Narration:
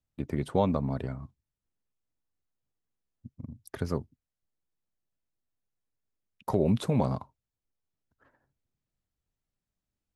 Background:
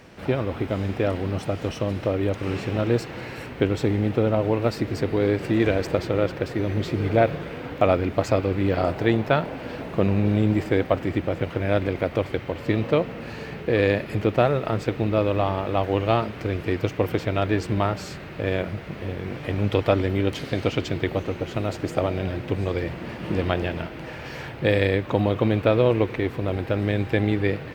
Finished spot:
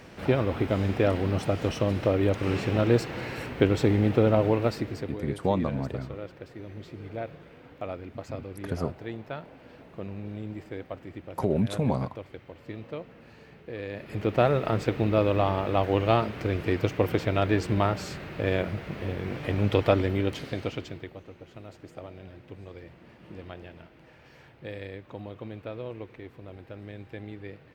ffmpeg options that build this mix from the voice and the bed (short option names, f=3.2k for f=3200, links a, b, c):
-filter_complex "[0:a]adelay=4900,volume=0dB[a];[1:a]volume=15dB,afade=t=out:st=4.39:d=0.81:silence=0.149624,afade=t=in:st=13.91:d=0.6:silence=0.177828,afade=t=out:st=19.87:d=1.26:silence=0.141254[b];[a][b]amix=inputs=2:normalize=0"